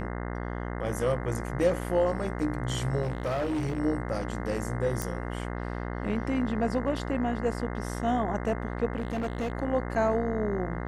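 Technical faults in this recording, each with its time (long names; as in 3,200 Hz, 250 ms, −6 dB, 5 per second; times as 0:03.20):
mains buzz 60 Hz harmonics 35 −34 dBFS
0:03.02–0:03.80: clipping −26 dBFS
0:05.02: click
0:08.97–0:09.52: clipping −26.5 dBFS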